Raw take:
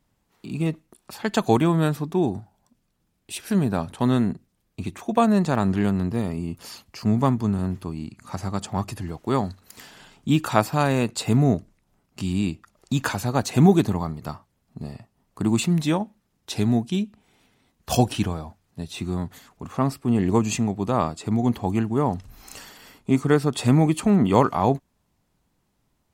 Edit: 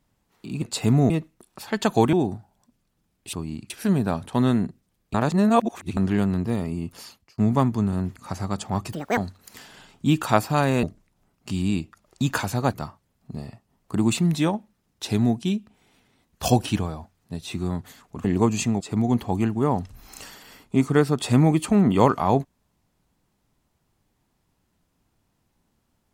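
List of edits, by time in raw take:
1.65–2.16 cut
4.8–5.63 reverse
6.58–7.04 fade out linear
7.82–8.19 move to 3.36
8.95–9.4 speed 178%
11.06–11.54 move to 0.62
13.44–14.2 cut
19.71–20.17 cut
20.73–21.15 cut

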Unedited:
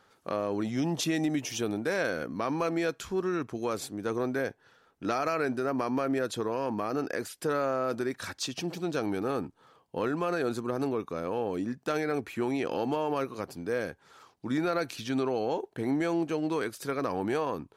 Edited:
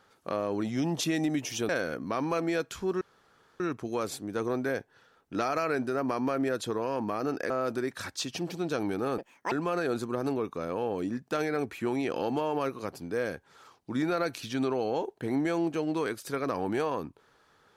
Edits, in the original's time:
1.69–1.98 cut
3.3 insert room tone 0.59 s
7.2–7.73 cut
9.41–10.07 speed 196%

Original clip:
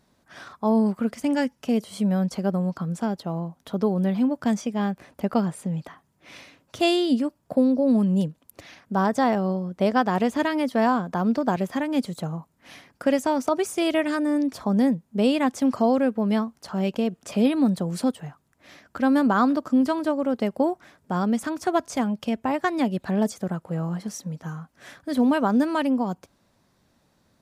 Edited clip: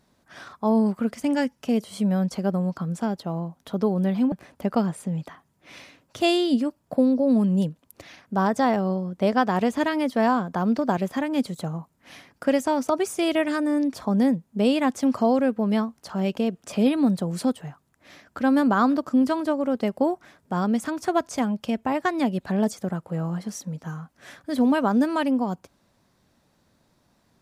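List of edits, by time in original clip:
4.32–4.91 cut

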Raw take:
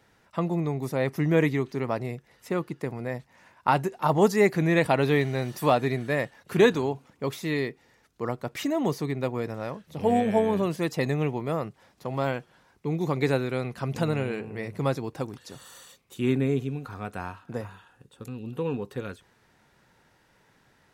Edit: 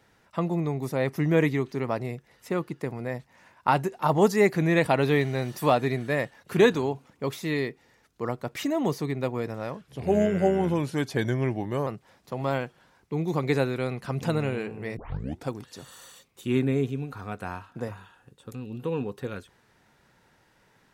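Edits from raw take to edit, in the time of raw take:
9.81–11.6 speed 87%
14.7 tape start 0.51 s

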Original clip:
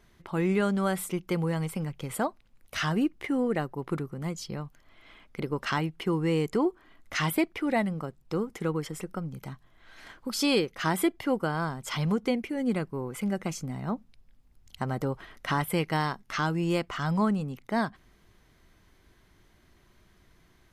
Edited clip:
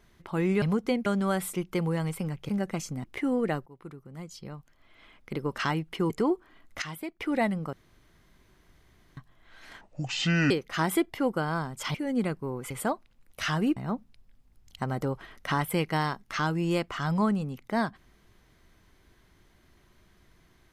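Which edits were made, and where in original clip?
2.05–3.11 swap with 13.21–13.76
3.73–5.57 fade in linear, from -18 dB
6.17–6.45 cut
7.17–7.55 gain -11.5 dB
8.08–9.52 room tone
10.16–10.57 speed 59%
12.01–12.45 move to 0.62

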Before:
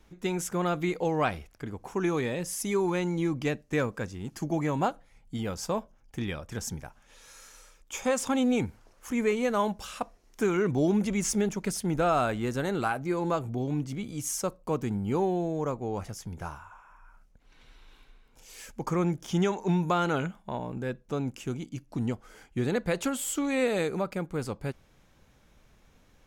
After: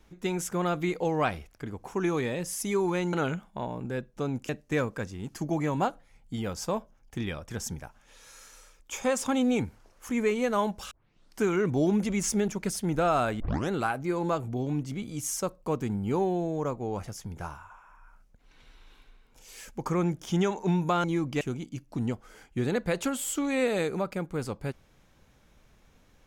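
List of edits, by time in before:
3.13–3.5 swap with 20.05–21.41
9.92 tape start 0.51 s
12.41 tape start 0.30 s

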